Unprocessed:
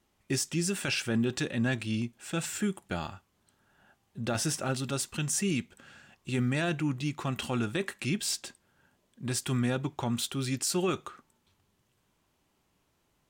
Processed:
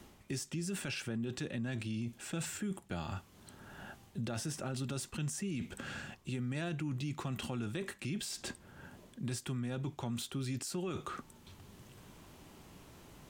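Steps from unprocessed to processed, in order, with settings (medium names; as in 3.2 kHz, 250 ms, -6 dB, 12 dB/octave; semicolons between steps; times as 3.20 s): bass shelf 440 Hz +6 dB; reverse; compression 5:1, threshold -38 dBFS, peak gain reduction 16.5 dB; reverse; peak limiter -36.5 dBFS, peak gain reduction 9.5 dB; three bands compressed up and down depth 40%; trim +6 dB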